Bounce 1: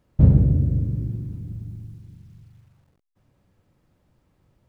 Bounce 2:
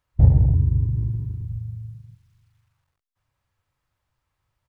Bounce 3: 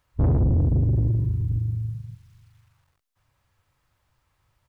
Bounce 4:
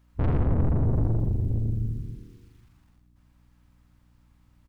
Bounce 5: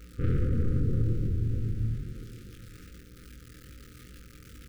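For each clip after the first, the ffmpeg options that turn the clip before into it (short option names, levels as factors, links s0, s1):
-filter_complex "[0:a]afwtdn=0.0562,firequalizer=gain_entry='entry(110,0);entry(180,-13);entry(1000,7)':delay=0.05:min_phase=1,asplit=2[s0][s1];[s1]acompressor=threshold=0.0708:ratio=6,volume=0.75[s2];[s0][s2]amix=inputs=2:normalize=0"
-filter_complex "[0:a]asplit=2[s0][s1];[s1]alimiter=limit=0.211:level=0:latency=1:release=21,volume=1.26[s2];[s0][s2]amix=inputs=2:normalize=0,asoftclip=type=tanh:threshold=0.141"
-filter_complex "[0:a]aeval=exprs='(tanh(17.8*val(0)+0.65)-tanh(0.65))/17.8':c=same,aeval=exprs='val(0)+0.000794*(sin(2*PI*60*n/s)+sin(2*PI*2*60*n/s)/2+sin(2*PI*3*60*n/s)/3+sin(2*PI*4*60*n/s)/4+sin(2*PI*5*60*n/s)/5)':c=same,asplit=2[s0][s1];[s1]asplit=6[s2][s3][s4][s5][s6][s7];[s2]adelay=83,afreqshift=-78,volume=0.447[s8];[s3]adelay=166,afreqshift=-156,volume=0.237[s9];[s4]adelay=249,afreqshift=-234,volume=0.126[s10];[s5]adelay=332,afreqshift=-312,volume=0.0668[s11];[s6]adelay=415,afreqshift=-390,volume=0.0351[s12];[s7]adelay=498,afreqshift=-468,volume=0.0186[s13];[s8][s9][s10][s11][s12][s13]amix=inputs=6:normalize=0[s14];[s0][s14]amix=inputs=2:normalize=0,volume=1.33"
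-af "aeval=exprs='val(0)+0.5*0.0126*sgn(val(0))':c=same,flanger=delay=20:depth=6.9:speed=2.4,afftfilt=real='re*(1-between(b*sr/4096,540,1200))':imag='im*(1-between(b*sr/4096,540,1200))':win_size=4096:overlap=0.75,volume=0.891"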